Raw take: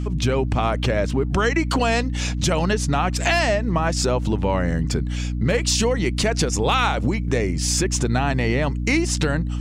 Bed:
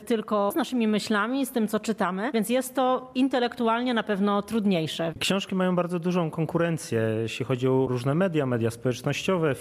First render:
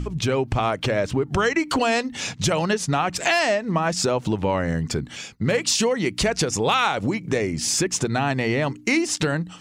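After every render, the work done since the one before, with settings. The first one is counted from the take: de-hum 60 Hz, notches 5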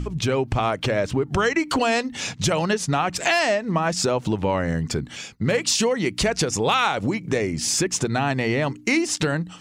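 nothing audible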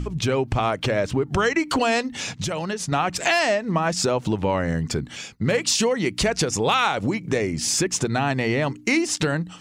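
2.21–2.92 compressor 2.5:1, threshold -25 dBFS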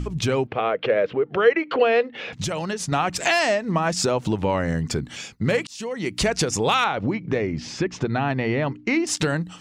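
0.47–2.33 speaker cabinet 260–3100 Hz, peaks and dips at 270 Hz -7 dB, 480 Hz +10 dB, 940 Hz -6 dB; 5.67–6.24 fade in; 6.84–9.07 air absorption 230 m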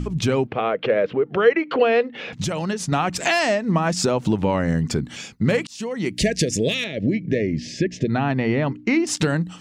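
bell 210 Hz +5 dB 1.3 oct; 6.14–8.09 spectral gain 680–1600 Hz -27 dB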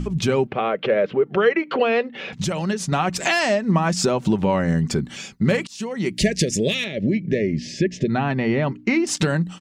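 comb 5.2 ms, depth 31%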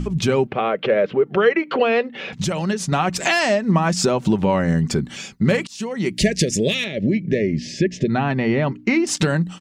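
gain +1.5 dB

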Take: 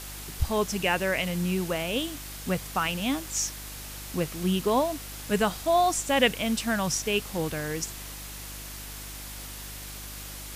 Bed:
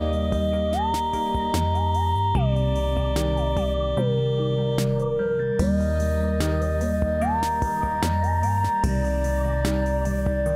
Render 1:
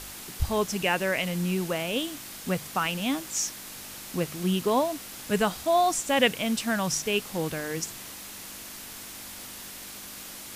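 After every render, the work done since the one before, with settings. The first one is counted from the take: de-hum 50 Hz, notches 3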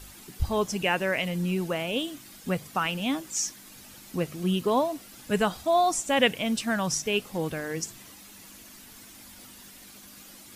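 denoiser 10 dB, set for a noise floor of -42 dBFS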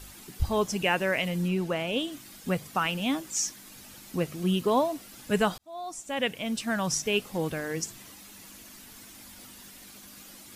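1.47–2.11 high shelf 6200 Hz -> 11000 Hz -8.5 dB; 5.58–6.98 fade in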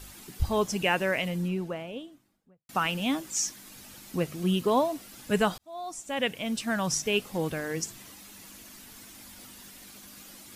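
0.95–2.69 studio fade out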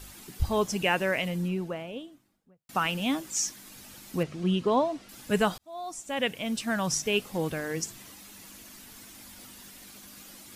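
4.23–5.09 air absorption 89 m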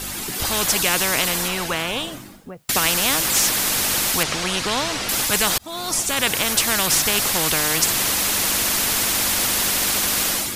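AGC gain up to 13 dB; spectral compressor 4:1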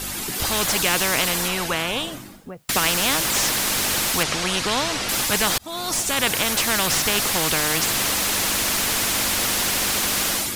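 slew limiter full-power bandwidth 750 Hz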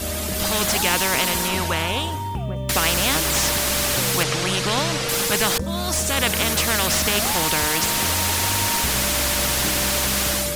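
add bed -6 dB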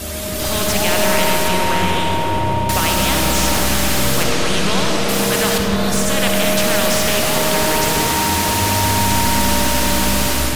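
repeats that get brighter 0.132 s, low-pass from 200 Hz, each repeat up 1 oct, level 0 dB; digital reverb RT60 3.9 s, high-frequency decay 0.5×, pre-delay 20 ms, DRR 0 dB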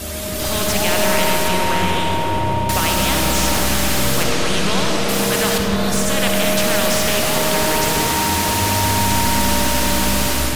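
gain -1 dB

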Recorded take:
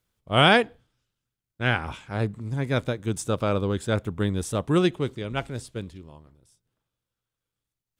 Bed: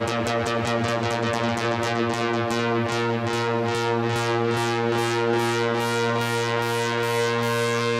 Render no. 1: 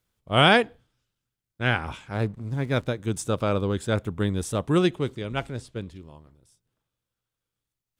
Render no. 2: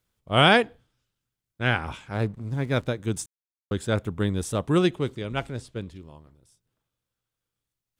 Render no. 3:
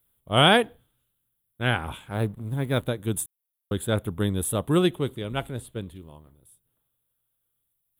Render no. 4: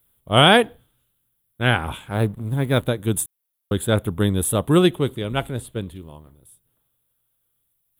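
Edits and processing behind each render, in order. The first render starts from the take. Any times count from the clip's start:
2.14–2.87 backlash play -43.5 dBFS; 5.51–5.91 high shelf 7100 Hz -10 dB
3.26–3.71 mute
EQ curve 930 Hz 0 dB, 2400 Hz -3 dB, 3500 Hz +3 dB, 5300 Hz -17 dB, 11000 Hz +15 dB
gain +5.5 dB; limiter -1 dBFS, peak gain reduction 2.5 dB

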